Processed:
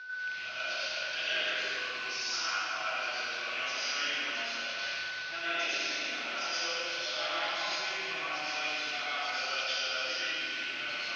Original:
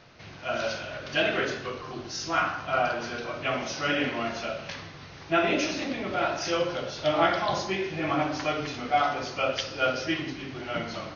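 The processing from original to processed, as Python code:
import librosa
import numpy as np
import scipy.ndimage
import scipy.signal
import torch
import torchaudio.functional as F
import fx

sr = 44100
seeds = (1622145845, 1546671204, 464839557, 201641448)

p1 = fx.rattle_buzz(x, sr, strikes_db=-42.0, level_db=-26.0)
p2 = p1 + 10.0 ** (-34.0 / 20.0) * np.sin(2.0 * np.pi * 1500.0 * np.arange(len(p1)) / sr)
p3 = fx.over_compress(p2, sr, threshold_db=-38.0, ratio=-1.0)
p4 = p2 + (p3 * 10.0 ** (-0.5 / 20.0))
p5 = scipy.signal.sosfilt(scipy.signal.butter(4, 5100.0, 'lowpass', fs=sr, output='sos'), p4)
p6 = np.diff(p5, prepend=0.0)
p7 = fx.rev_plate(p6, sr, seeds[0], rt60_s=2.3, hf_ratio=0.75, predelay_ms=80, drr_db=-9.5)
y = p7 * 10.0 ** (-3.5 / 20.0)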